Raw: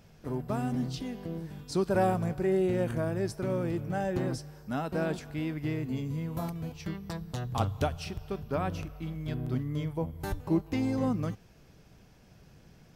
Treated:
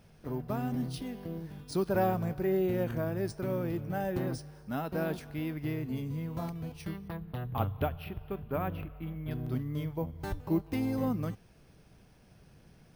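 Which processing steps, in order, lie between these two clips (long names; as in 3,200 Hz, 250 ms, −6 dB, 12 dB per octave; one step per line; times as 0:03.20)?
0:07.08–0:09.31: low-pass filter 3,100 Hz 24 dB per octave
bad sample-rate conversion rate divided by 3×, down filtered, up hold
level −2 dB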